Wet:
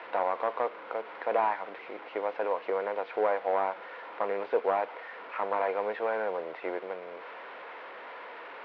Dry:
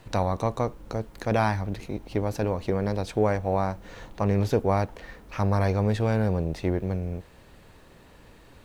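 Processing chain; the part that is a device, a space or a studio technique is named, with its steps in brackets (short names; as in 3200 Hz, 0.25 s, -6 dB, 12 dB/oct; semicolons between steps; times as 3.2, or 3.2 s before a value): digital answering machine (BPF 350–3300 Hz; delta modulation 32 kbps, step -38 dBFS; speaker cabinet 400–3100 Hz, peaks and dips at 490 Hz +6 dB, 700 Hz +4 dB, 990 Hz +8 dB, 1400 Hz +7 dB, 2100 Hz +6 dB); gain -4 dB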